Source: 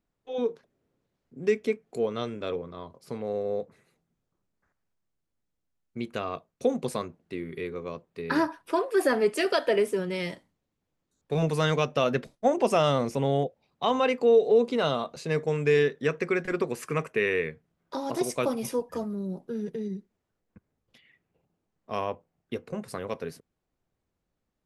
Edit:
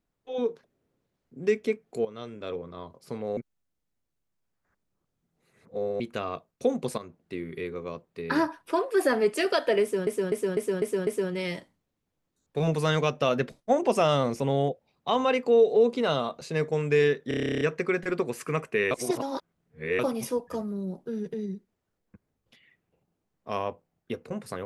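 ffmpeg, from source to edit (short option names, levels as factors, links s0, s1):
-filter_complex "[0:a]asplit=23[s0][s1][s2][s3][s4][s5][s6][s7][s8][s9][s10][s11][s12][s13][s14][s15][s16][s17][s18][s19][s20][s21][s22];[s0]atrim=end=2.05,asetpts=PTS-STARTPTS,afade=t=out:st=2.046:d=0.004:c=hsin:silence=0.237137[s23];[s1]atrim=start=2.05:end=3.372,asetpts=PTS-STARTPTS,afade=t=in:d=0.73:silence=0.237137[s24];[s2]atrim=start=3.368:end=6.002,asetpts=PTS-STARTPTS,areverse[s25];[s3]atrim=start=5.998:end=6.98,asetpts=PTS-STARTPTS,afade=t=out:st=0.978:d=0.004:c=hsin:silence=0.237137[s26];[s4]atrim=start=6.98:end=10.072,asetpts=PTS-STARTPTS,afade=t=in:d=0.36:c=qsin:silence=0.237137[s27];[s5]atrim=start=9.818:end=10.072[s28];[s6]atrim=start=9.818:end=10.072[s29];[s7]atrim=start=9.818:end=10.072[s30];[s8]atrim=start=9.818:end=10.072[s31];[s9]atrim=start=9.818:end=16.062[s32];[s10]atrim=start=16.028:end=16.062[s33];[s11]atrim=start=16.028:end=16.062[s34];[s12]atrim=start=16.028:end=16.062[s35];[s13]atrim=start=16.028:end=16.062[s36];[s14]atrim=start=16.028:end=16.062[s37];[s15]atrim=start=16.028:end=16.062[s38];[s16]atrim=start=16.028:end=16.062[s39];[s17]atrim=start=16.028:end=16.062[s40];[s18]atrim=start=16.028:end=16.062[s41];[s19]atrim=start=16.028:end=16.062[s42];[s20]atrim=start=16.028:end=17.332[s43];[s21]atrim=start=17.328:end=18.412,asetpts=PTS-STARTPTS,areverse[s44];[s22]atrim=start=18.408[s45];[s23][s24]concat=n=2:v=0:a=1[s46];[s46][s25]acrossfade=d=0.004:c1=hsin:c2=hsin[s47];[s26][s27]concat=n=2:v=0:a=1[s48];[s47][s48]acrossfade=d=0.004:c1=hsin:c2=hsin[s49];[s49][s28]acrossfade=d=0.004:c1=hsin:c2=hsin[s50];[s50][s29]acrossfade=d=0.004:c1=hsin:c2=hsin[s51];[s51][s30]acrossfade=d=0.004:c1=hsin:c2=hsin[s52];[s52][s31]acrossfade=d=0.004:c1=hsin:c2=hsin[s53];[s53][s32]acrossfade=d=0.004:c1=hsin:c2=hsin[s54];[s54][s33]acrossfade=d=0.004:c1=hsin:c2=hsin[s55];[s55][s34]acrossfade=d=0.004:c1=hsin:c2=hsin[s56];[s56][s35]acrossfade=d=0.004:c1=hsin:c2=hsin[s57];[s57][s36]acrossfade=d=0.004:c1=hsin:c2=hsin[s58];[s58][s37]acrossfade=d=0.004:c1=hsin:c2=hsin[s59];[s59][s38]acrossfade=d=0.004:c1=hsin:c2=hsin[s60];[s60][s39]acrossfade=d=0.004:c1=hsin:c2=hsin[s61];[s61][s40]acrossfade=d=0.004:c1=hsin:c2=hsin[s62];[s62][s41]acrossfade=d=0.004:c1=hsin:c2=hsin[s63];[s63][s42]acrossfade=d=0.004:c1=hsin:c2=hsin[s64];[s64][s43]acrossfade=d=0.004:c1=hsin:c2=hsin[s65];[s65][s44]acrossfade=d=0.004:c1=hsin:c2=hsin[s66];[s66][s45]acrossfade=d=0.004:c1=hsin:c2=hsin"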